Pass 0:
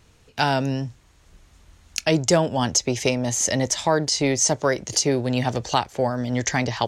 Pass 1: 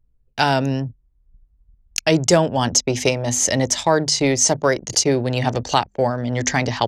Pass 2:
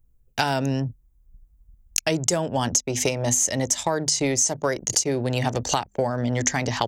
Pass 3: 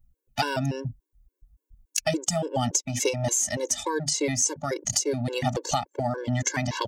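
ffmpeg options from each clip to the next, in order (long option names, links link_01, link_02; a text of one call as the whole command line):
ffmpeg -i in.wav -af "bandreject=frequency=50:width_type=h:width=6,bandreject=frequency=100:width_type=h:width=6,bandreject=frequency=150:width_type=h:width=6,bandreject=frequency=200:width_type=h:width=6,bandreject=frequency=250:width_type=h:width=6,anlmdn=6.31,volume=3.5dB" out.wav
ffmpeg -i in.wav -af "aexciter=amount=3.7:drive=1.5:freq=6300,acompressor=threshold=-21dB:ratio=6,volume=1.5dB" out.wav
ffmpeg -i in.wav -af "afftfilt=real='re*gt(sin(2*PI*3.5*pts/sr)*(1-2*mod(floor(b*sr/1024/290),2)),0)':imag='im*gt(sin(2*PI*3.5*pts/sr)*(1-2*mod(floor(b*sr/1024/290),2)),0)':win_size=1024:overlap=0.75" out.wav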